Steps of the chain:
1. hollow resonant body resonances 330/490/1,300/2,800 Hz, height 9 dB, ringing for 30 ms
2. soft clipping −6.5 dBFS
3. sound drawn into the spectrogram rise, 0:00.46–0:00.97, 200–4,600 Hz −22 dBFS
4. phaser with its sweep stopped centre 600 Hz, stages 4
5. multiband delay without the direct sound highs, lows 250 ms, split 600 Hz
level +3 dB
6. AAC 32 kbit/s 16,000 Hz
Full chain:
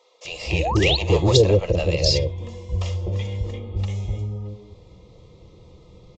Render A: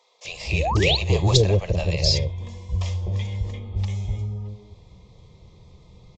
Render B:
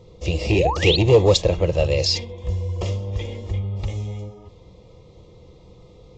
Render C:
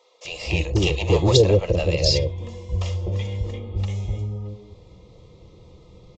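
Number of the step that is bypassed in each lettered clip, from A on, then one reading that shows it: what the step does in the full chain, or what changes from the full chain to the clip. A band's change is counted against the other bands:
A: 1, 500 Hz band −4.5 dB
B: 5, change in crest factor −2.5 dB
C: 3, 1 kHz band −3.5 dB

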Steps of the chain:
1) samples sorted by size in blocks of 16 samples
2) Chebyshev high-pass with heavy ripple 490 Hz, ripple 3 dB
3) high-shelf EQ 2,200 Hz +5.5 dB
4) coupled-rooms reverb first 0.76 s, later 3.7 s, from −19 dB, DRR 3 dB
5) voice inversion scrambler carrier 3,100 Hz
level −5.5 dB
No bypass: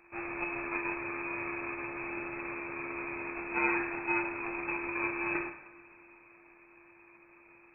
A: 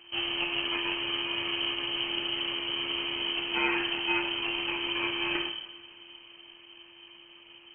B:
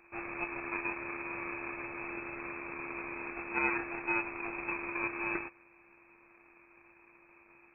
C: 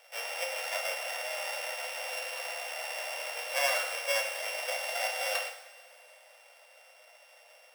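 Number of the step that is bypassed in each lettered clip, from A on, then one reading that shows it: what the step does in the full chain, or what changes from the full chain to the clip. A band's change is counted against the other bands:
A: 2, 2 kHz band +1.5 dB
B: 4, change in integrated loudness −2.0 LU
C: 5, change in crest factor +3.5 dB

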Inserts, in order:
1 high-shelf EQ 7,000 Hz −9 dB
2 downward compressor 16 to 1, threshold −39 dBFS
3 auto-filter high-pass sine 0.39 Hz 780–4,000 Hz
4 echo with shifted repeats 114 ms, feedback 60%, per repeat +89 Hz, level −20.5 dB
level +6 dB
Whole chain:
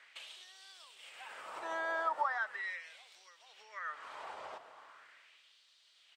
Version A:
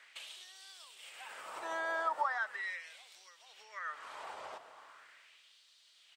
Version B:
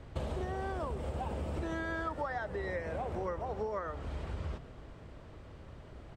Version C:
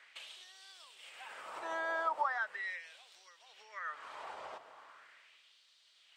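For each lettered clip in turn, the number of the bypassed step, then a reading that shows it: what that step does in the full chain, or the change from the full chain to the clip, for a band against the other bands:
1, 8 kHz band +4.5 dB
3, 250 Hz band +21.0 dB
4, echo-to-direct ratio −18.5 dB to none audible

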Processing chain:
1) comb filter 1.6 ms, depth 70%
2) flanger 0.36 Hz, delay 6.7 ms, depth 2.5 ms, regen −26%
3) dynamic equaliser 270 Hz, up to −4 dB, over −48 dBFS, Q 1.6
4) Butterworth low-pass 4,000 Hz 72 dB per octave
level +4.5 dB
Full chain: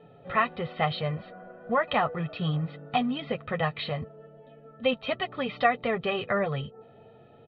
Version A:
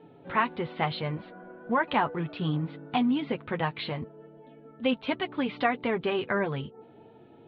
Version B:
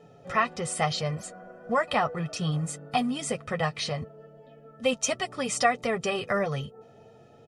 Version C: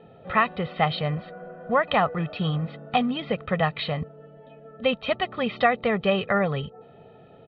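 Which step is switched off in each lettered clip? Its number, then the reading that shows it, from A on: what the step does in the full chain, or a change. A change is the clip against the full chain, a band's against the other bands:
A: 1, 250 Hz band +5.0 dB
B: 4, 4 kHz band +2.0 dB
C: 2, change in integrated loudness +3.5 LU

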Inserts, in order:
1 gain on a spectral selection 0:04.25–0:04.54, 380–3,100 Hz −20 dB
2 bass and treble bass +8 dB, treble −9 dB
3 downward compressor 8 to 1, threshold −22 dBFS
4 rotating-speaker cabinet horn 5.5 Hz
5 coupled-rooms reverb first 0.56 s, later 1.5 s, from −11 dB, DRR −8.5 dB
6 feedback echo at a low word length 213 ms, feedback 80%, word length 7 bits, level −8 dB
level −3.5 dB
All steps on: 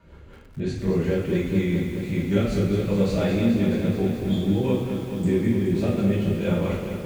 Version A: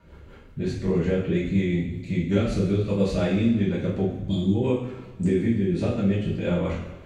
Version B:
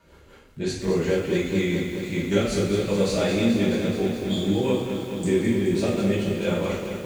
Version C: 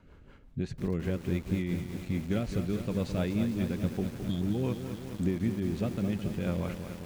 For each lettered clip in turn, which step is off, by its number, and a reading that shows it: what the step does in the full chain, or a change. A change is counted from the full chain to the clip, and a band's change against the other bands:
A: 6, change in integrated loudness −1.0 LU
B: 2, 125 Hz band −6.0 dB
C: 5, 500 Hz band −3.0 dB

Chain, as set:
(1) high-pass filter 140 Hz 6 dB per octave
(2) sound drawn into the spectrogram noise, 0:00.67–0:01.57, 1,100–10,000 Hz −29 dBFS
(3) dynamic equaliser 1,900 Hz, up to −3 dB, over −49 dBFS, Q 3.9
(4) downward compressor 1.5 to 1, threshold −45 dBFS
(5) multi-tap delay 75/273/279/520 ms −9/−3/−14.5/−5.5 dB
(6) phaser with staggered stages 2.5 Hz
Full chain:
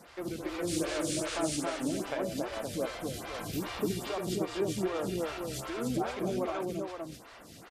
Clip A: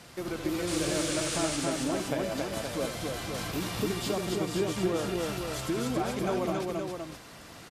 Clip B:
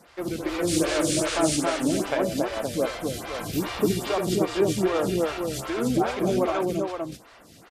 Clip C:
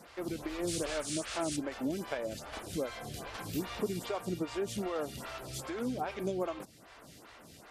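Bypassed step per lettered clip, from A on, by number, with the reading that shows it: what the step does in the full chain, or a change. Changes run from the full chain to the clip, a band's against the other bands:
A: 6, 4 kHz band +1.5 dB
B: 4, average gain reduction 6.5 dB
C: 5, change in momentary loudness spread +8 LU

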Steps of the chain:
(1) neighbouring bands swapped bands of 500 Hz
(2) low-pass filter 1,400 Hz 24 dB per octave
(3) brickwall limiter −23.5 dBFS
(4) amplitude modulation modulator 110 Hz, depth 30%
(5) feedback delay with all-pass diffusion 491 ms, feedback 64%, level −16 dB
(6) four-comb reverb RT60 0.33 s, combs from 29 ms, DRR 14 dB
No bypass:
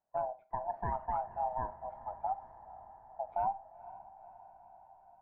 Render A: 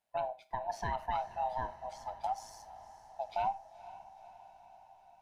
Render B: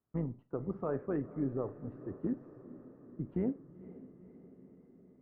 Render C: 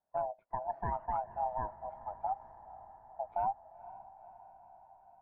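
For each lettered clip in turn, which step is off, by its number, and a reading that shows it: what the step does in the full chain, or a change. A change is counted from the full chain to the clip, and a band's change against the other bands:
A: 2, 2 kHz band +7.5 dB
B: 1, 1 kHz band −23.5 dB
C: 6, echo-to-direct ratio −11.0 dB to −13.5 dB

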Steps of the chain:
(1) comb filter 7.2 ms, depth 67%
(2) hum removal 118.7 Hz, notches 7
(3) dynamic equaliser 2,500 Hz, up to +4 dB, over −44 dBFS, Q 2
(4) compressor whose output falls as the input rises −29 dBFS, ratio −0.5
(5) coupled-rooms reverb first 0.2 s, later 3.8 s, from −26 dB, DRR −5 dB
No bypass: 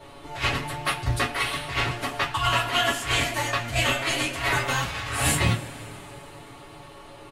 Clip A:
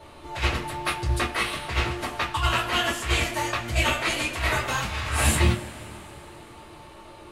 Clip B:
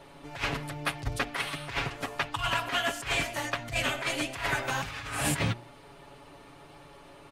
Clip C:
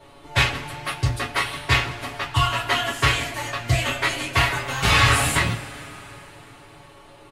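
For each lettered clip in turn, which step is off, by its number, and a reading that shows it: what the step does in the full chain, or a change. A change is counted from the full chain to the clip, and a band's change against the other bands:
1, 250 Hz band +2.0 dB
5, change in momentary loudness spread −14 LU
4, change in crest factor +1.5 dB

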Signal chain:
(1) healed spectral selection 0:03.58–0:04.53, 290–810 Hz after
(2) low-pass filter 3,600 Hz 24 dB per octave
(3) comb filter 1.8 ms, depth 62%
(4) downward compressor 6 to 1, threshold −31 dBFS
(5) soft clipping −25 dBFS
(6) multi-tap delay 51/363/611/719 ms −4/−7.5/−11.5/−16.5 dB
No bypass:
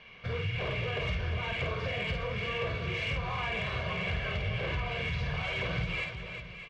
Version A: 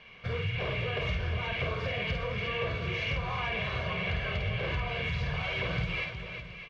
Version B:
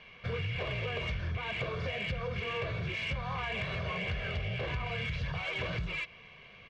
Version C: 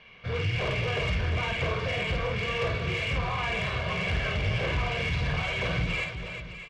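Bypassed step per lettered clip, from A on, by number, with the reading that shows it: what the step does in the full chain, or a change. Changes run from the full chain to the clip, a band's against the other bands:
5, distortion level −23 dB
6, echo-to-direct ratio −1.5 dB to none audible
4, change in integrated loudness +4.5 LU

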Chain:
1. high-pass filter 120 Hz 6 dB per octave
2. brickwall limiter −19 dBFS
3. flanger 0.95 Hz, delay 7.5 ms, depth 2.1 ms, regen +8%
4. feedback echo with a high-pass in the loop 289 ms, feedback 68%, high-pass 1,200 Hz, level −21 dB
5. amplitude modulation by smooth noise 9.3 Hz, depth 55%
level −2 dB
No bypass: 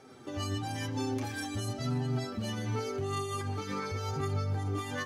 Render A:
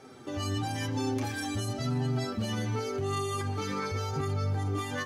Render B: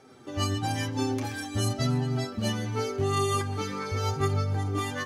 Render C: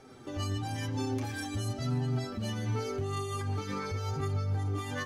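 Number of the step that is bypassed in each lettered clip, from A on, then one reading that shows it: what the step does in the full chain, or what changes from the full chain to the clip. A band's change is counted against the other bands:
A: 5, change in momentary loudness spread −1 LU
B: 2, average gain reduction 4.5 dB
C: 1, 125 Hz band +2.5 dB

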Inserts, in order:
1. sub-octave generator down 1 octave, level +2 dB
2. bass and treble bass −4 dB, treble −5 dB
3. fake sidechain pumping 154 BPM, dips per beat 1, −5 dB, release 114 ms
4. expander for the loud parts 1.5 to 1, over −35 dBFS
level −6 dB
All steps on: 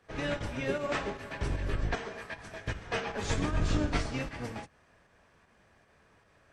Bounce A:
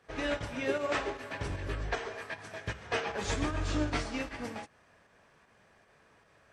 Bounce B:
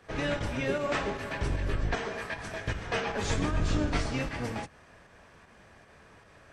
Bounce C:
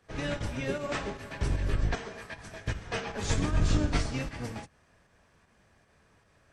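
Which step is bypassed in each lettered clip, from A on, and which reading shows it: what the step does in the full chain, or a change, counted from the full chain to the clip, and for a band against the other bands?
1, 125 Hz band −4.5 dB
4, change in momentary loudness spread −4 LU
2, change in momentary loudness spread +2 LU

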